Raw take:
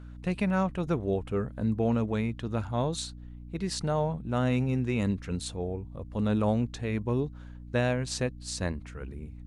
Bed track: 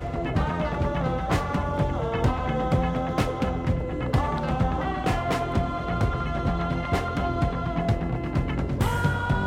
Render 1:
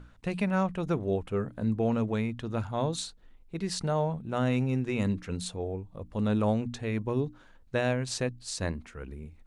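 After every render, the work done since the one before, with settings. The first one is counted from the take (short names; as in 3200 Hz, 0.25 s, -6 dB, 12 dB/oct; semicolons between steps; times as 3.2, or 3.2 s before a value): notches 60/120/180/240/300 Hz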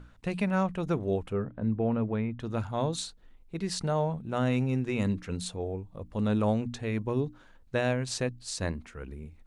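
1.33–2.4 air absorption 420 m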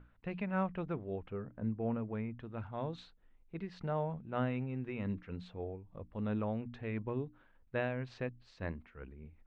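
ladder low-pass 3300 Hz, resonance 20%; noise-modulated level, depth 60%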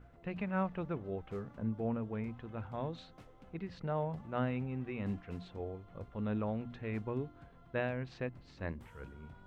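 add bed track -32.5 dB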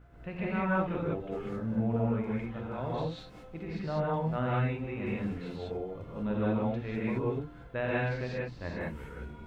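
non-linear reverb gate 0.22 s rising, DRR -6 dB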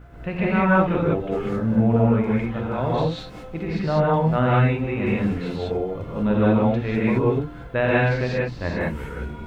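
gain +11.5 dB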